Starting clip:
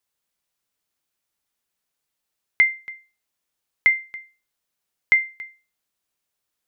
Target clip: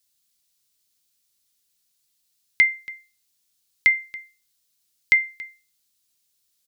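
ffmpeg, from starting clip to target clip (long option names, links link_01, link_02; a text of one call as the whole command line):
ffmpeg -i in.wav -af "firequalizer=gain_entry='entry(120,0);entry(700,-10);entry(4100,8)':delay=0.05:min_phase=1,volume=2.5dB" out.wav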